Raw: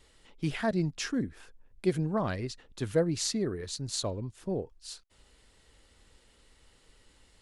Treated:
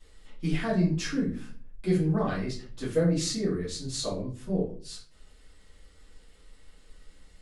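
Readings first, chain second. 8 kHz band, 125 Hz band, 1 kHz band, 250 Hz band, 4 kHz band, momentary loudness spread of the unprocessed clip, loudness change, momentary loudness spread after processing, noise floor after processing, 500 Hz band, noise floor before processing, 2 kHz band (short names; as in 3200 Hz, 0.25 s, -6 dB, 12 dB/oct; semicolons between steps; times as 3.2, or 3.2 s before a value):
0.0 dB, +4.5 dB, +0.5 dB, +4.5 dB, +1.0 dB, 11 LU, +3.0 dB, 11 LU, -56 dBFS, +1.5 dB, -64 dBFS, +1.5 dB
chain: shoebox room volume 30 m³, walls mixed, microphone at 1.6 m; gain -8 dB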